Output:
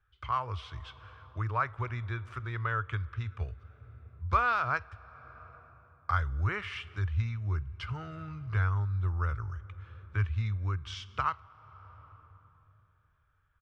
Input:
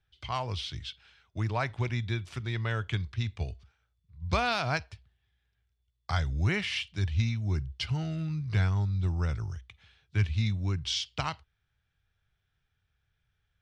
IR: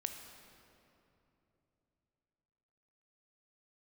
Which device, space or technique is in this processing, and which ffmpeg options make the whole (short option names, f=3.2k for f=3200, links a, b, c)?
ducked reverb: -filter_complex "[0:a]firequalizer=gain_entry='entry(100,0);entry(170,-13);entry(470,-1);entry(720,-7);entry(1200,11);entry(1900,-3);entry(4200,-15);entry(7200,-13)':delay=0.05:min_phase=1,asplit=3[a][b][c];[1:a]atrim=start_sample=2205[d];[b][d]afir=irnorm=-1:irlink=0[e];[c]apad=whole_len=604673[f];[e][f]sidechaincompress=threshold=-43dB:ratio=6:attack=34:release=534,volume=-0.5dB[g];[a][g]amix=inputs=2:normalize=0,volume=-2.5dB"